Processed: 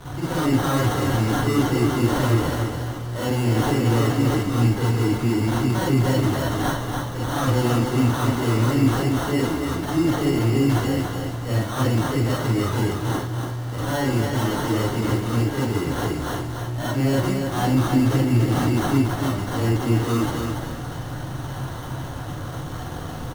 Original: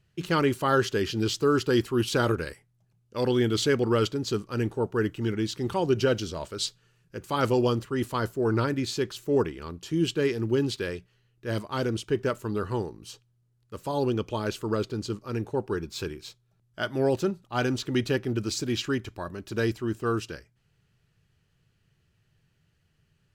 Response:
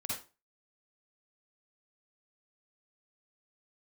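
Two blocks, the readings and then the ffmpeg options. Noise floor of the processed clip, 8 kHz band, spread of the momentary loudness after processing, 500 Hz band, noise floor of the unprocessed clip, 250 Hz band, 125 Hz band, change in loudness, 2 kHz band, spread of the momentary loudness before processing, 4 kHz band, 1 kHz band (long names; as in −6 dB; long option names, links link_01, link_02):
−31 dBFS, +6.0 dB, 11 LU, +1.0 dB, −70 dBFS, +7.5 dB, +11.5 dB, +5.5 dB, +4.5 dB, 11 LU, +2.5 dB, +6.5 dB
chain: -filter_complex "[0:a]aeval=exprs='val(0)+0.5*0.02*sgn(val(0))':channel_layout=same,equalizer=frequency=160:width_type=o:width=0.67:gain=-6,equalizer=frequency=400:width_type=o:width=0.67:gain=-4,equalizer=frequency=1600:width_type=o:width=0.67:gain=-6,equalizer=frequency=10000:width_type=o:width=0.67:gain=9,asplit=2[link_01][link_02];[link_02]alimiter=limit=-22.5dB:level=0:latency=1,volume=2dB[link_03];[link_01][link_03]amix=inputs=2:normalize=0,acrusher=samples=18:mix=1:aa=0.000001,acrossover=split=180[link_04][link_05];[link_05]asoftclip=type=tanh:threshold=-16.5dB[link_06];[link_04][link_06]amix=inputs=2:normalize=0,aecho=1:1:285|570|855|1140:0.562|0.186|0.0612|0.0202[link_07];[1:a]atrim=start_sample=2205,asetrate=52920,aresample=44100[link_08];[link_07][link_08]afir=irnorm=-1:irlink=0"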